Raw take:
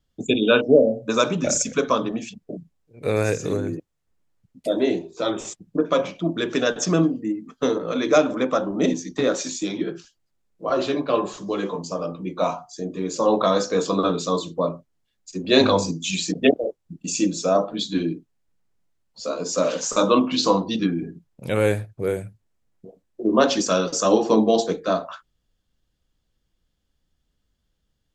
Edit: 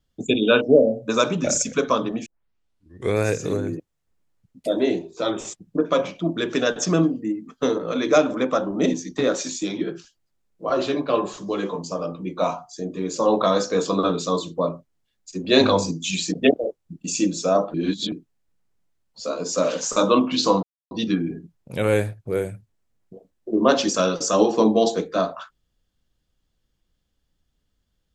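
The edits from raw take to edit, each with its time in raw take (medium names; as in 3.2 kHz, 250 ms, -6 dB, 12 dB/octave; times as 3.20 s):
2.26 s: tape start 0.90 s
17.74–18.12 s: reverse
20.63 s: insert silence 0.28 s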